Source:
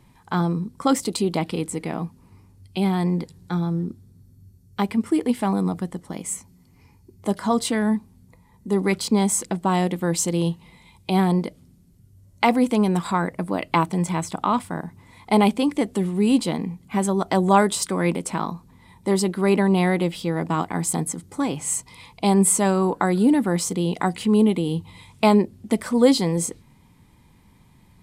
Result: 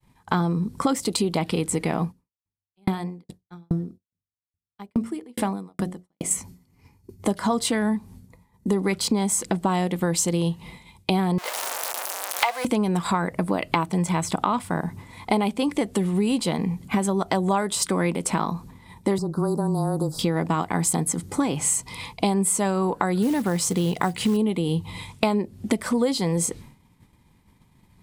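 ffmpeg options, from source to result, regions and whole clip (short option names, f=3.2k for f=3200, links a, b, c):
-filter_complex "[0:a]asettb=1/sr,asplit=3[a][b][c];[a]atrim=end=2.044[d];[b]atrim=start=2.04:end=6.31,asetpts=PTS-STARTPTS,afade=t=in:d=0.004:c=qsin,afade=t=out:st=4.266:d=0.004:c=qsin,bandreject=f=45.54:t=h:w=4,bandreject=f=91.08:t=h:w=4,bandreject=f=136.62:t=h:w=4,bandreject=f=182.16:t=h:w=4,bandreject=f=227.7:t=h:w=4,bandreject=f=273.24:t=h:w=4,bandreject=f=318.78:t=h:w=4,bandreject=f=364.32:t=h:w=4,bandreject=f=409.86:t=h:w=4,bandreject=f=455.4:t=h:w=4,bandreject=f=500.94:t=h:w=4,bandreject=f=546.48:t=h:w=4,bandreject=f=592.02:t=h:w=4,bandreject=f=637.56:t=h:w=4,bandreject=f=683.1:t=h:w=4,bandreject=f=728.64:t=h:w=4,agate=range=-10dB:threshold=-43dB:ratio=16:release=100:detection=peak,aeval=exprs='val(0)*pow(10,-37*if(lt(mod(2.4*n/s,1),2*abs(2.4)/1000),1-mod(2.4*n/s,1)/(2*abs(2.4)/1000),(mod(2.4*n/s,1)-2*abs(2.4)/1000)/(1-2*abs(2.4)/1000))/20)':c=same[e];[c]atrim=start=6.306[f];[d][e]acrossfade=d=0.004:c1=hsin:c2=qsin[g];[g][f]acrossfade=d=0.004:c1=qsin:c2=hsin,asettb=1/sr,asplit=3[h][i][j];[h]atrim=end=11.384[k];[i]atrim=start=11.38:end=12.65,asetpts=PTS-STARTPTS,afade=t=in:d=0.004:c=qsin,afade=t=out:st=1.266:d=0.004:c=qsin,aeval=exprs='val(0)+0.5*0.0631*sgn(val(0))':c=same,highpass=f=660:w=0.5412,highpass=f=660:w=1.3066[l];[j]atrim=start=12.646[m];[k][l]acrossfade=d=0.004:c1=hsin:c2=qsin[n];[n][m]acrossfade=d=0.004:c1=qsin:c2=hsin,asettb=1/sr,asplit=3[o][p][q];[o]atrim=end=19.184[r];[p]atrim=start=19.18:end=20.19,asetpts=PTS-STARTPTS,afade=t=in:d=0.004:c=qsin,afade=t=out:st=1.006:d=0.004:c=qsin,afreqshift=-18,acrossover=split=2000|4500[s][t][u];[s]acompressor=threshold=-25dB:ratio=4[v];[t]acompressor=threshold=-43dB:ratio=4[w];[u]acompressor=threshold=-45dB:ratio=4[x];[v][w][x]amix=inputs=3:normalize=0,asuperstop=centerf=2500:order=8:qfactor=0.76[y];[q]atrim=start=20.186[z];[r][y]acrossfade=d=0.004:c1=hsin:c2=qsin[aa];[aa][z]acrossfade=d=0.004:c1=qsin:c2=hsin,asettb=1/sr,asplit=3[ab][ac][ad];[ab]atrim=end=23.224[ae];[ac]atrim=start=23.22:end=24.37,asetpts=PTS-STARTPTS,afade=t=in:d=0.004:c=qsin,afade=t=out:st=1.146:d=0.004:c=qsin,equalizer=f=130:t=o:w=0.31:g=8,acrusher=bits=6:mode=log:mix=0:aa=0.000001[af];[ad]atrim=start=24.366[ag];[ae][af]acrossfade=d=0.004:c1=hsin:c2=qsin[ah];[ah][ag]acrossfade=d=0.004:c1=qsin:c2=hsin,agate=range=-33dB:threshold=-44dB:ratio=3:detection=peak,adynamicequalizer=threshold=0.02:dfrequency=280:dqfactor=1.8:tfrequency=280:tqfactor=1.8:attack=5:release=100:ratio=0.375:range=2.5:mode=cutabove:tftype=bell,acompressor=threshold=-29dB:ratio=6,volume=9dB"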